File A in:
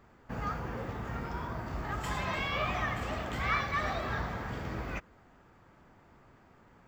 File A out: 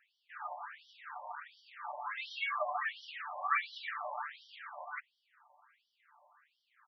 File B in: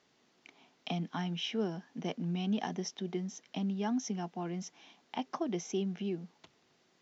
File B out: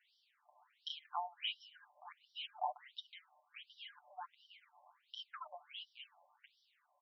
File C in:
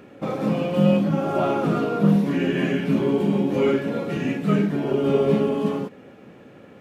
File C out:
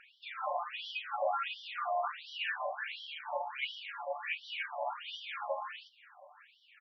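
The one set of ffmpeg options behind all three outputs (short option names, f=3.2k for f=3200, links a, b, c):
-af "aecho=1:1:6.8:0.94,aeval=exprs='0.596*(cos(1*acos(clip(val(0)/0.596,-1,1)))-cos(1*PI/2))+0.0335*(cos(3*acos(clip(val(0)/0.596,-1,1)))-cos(3*PI/2))':c=same,afftfilt=real='re*between(b*sr/1024,770*pow(4200/770,0.5+0.5*sin(2*PI*1.4*pts/sr))/1.41,770*pow(4200/770,0.5+0.5*sin(2*PI*1.4*pts/sr))*1.41)':imag='im*between(b*sr/1024,770*pow(4200/770,0.5+0.5*sin(2*PI*1.4*pts/sr))/1.41,770*pow(4200/770,0.5+0.5*sin(2*PI*1.4*pts/sr))*1.41)':win_size=1024:overlap=0.75"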